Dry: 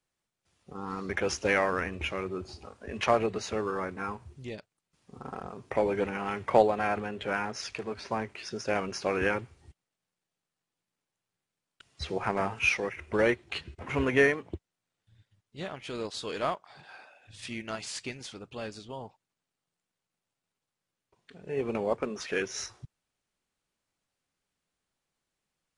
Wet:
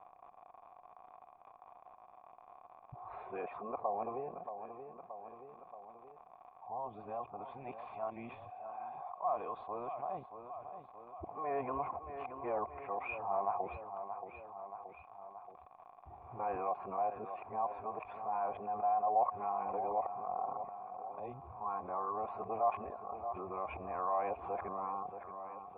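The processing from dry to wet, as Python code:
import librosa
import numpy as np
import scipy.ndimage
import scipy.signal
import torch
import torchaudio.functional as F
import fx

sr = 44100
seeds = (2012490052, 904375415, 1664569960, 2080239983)

p1 = np.flip(x).copy()
p2 = fx.dmg_crackle(p1, sr, seeds[0], per_s=110.0, level_db=-46.0)
p3 = fx.formant_cascade(p2, sr, vowel='a')
p4 = p3 + fx.echo_feedback(p3, sr, ms=627, feedback_pct=41, wet_db=-17.5, dry=0)
p5 = fx.env_flatten(p4, sr, amount_pct=50)
y = F.gain(torch.from_numpy(p5), -1.5).numpy()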